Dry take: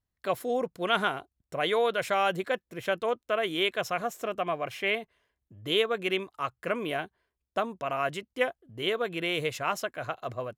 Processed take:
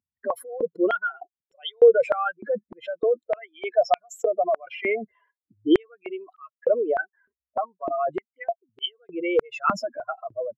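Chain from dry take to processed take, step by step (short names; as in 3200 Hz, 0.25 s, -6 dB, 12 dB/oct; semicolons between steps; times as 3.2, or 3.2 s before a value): spectral contrast raised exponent 3.5; stepped high-pass 3.3 Hz 220–3000 Hz; gain +3 dB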